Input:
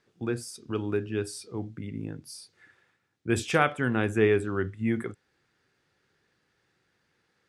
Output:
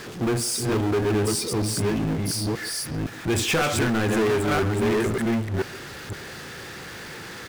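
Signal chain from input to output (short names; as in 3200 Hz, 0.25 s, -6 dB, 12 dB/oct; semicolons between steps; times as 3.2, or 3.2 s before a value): reverse delay 0.511 s, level -3.5 dB; sample leveller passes 1; compressor, threshold -21 dBFS, peak gain reduction 7.5 dB; power-law curve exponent 0.35; speakerphone echo 0.14 s, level -12 dB; gain -3.5 dB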